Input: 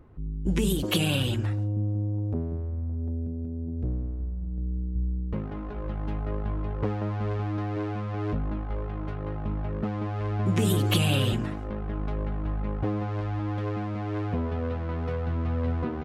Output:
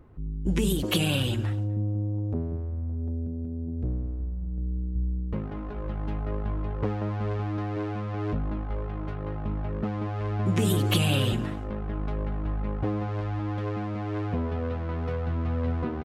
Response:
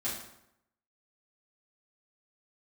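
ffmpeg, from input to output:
-af "aecho=1:1:247:0.0668"

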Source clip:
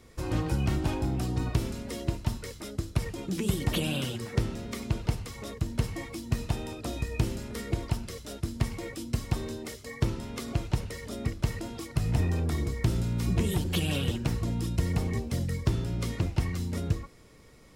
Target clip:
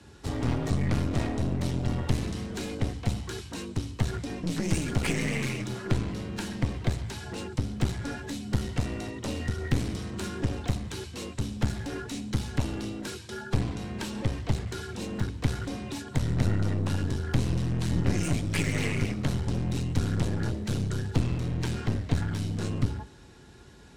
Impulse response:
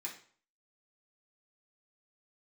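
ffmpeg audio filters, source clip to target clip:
-filter_complex "[0:a]afreqshift=49,asetrate=32667,aresample=44100,asplit=2[link_01][link_02];[1:a]atrim=start_sample=2205,adelay=142[link_03];[link_02][link_03]afir=irnorm=-1:irlink=0,volume=-21dB[link_04];[link_01][link_04]amix=inputs=2:normalize=0,aeval=exprs='clip(val(0),-1,0.0158)':channel_layout=same,volume=3.5dB"

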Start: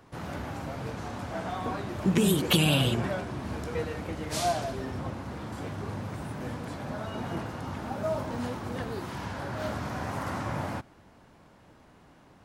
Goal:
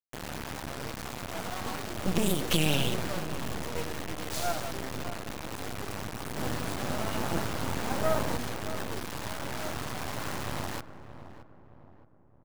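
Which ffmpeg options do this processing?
ffmpeg -i in.wav -filter_complex "[0:a]asettb=1/sr,asplit=3[link_01][link_02][link_03];[link_01]atrim=end=6.364[link_04];[link_02]atrim=start=6.36:end=8.37,asetpts=PTS-STARTPTS,afade=type=in:duration=0.004:curve=qsin,afade=type=out:start_time=2.006:duration=0.004:curve=qsin,acontrast=66[link_05];[link_03]atrim=start=8.366[link_06];[link_04][link_05]acrossfade=duration=0.004:curve1=hsin:curve2=qsin[link_07];[link_07][link_06]acrossfade=duration=0.004:curve1=qsin:curve2=hsin,acrusher=bits=3:dc=4:mix=0:aa=0.000001,asplit=2[link_08][link_09];[link_09]adelay=620,lowpass=frequency=1100:poles=1,volume=-11.5dB,asplit=2[link_10][link_11];[link_11]adelay=620,lowpass=frequency=1100:poles=1,volume=0.48,asplit=2[link_12][link_13];[link_13]adelay=620,lowpass=frequency=1100:poles=1,volume=0.48,asplit=2[link_14][link_15];[link_15]adelay=620,lowpass=frequency=1100:poles=1,volume=0.48,asplit=2[link_16][link_17];[link_17]adelay=620,lowpass=frequency=1100:poles=1,volume=0.48[link_18];[link_08][link_10][link_12][link_14][link_16][link_18]amix=inputs=6:normalize=0" out.wav

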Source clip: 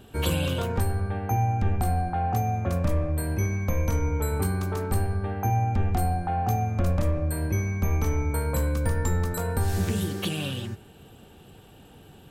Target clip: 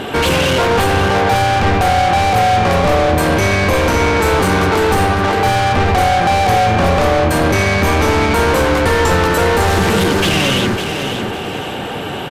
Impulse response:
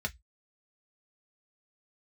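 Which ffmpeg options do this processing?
-filter_complex "[0:a]highshelf=frequency=2400:gain=-4.5,acrossover=split=4100[link_01][link_02];[link_01]acontrast=68[link_03];[link_03][link_02]amix=inputs=2:normalize=0,asplit=2[link_04][link_05];[link_05]highpass=frequency=720:poles=1,volume=34dB,asoftclip=type=tanh:threshold=-8dB[link_06];[link_04][link_06]amix=inputs=2:normalize=0,lowpass=frequency=5900:poles=1,volume=-6dB,asplit=2[link_07][link_08];[link_08]asetrate=33038,aresample=44100,atempo=1.33484,volume=-10dB[link_09];[link_07][link_09]amix=inputs=2:normalize=0,asplit=2[link_10][link_11];[link_11]aecho=0:1:554|1108|1662|2216:0.422|0.143|0.0487|0.0166[link_12];[link_10][link_12]amix=inputs=2:normalize=0,aresample=32000,aresample=44100"

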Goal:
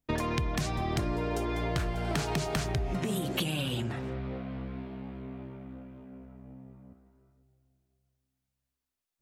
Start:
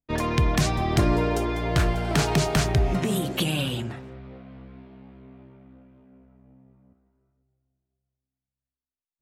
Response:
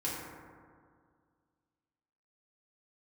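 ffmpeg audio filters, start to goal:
-af "acompressor=threshold=-35dB:ratio=6,volume=6dB"

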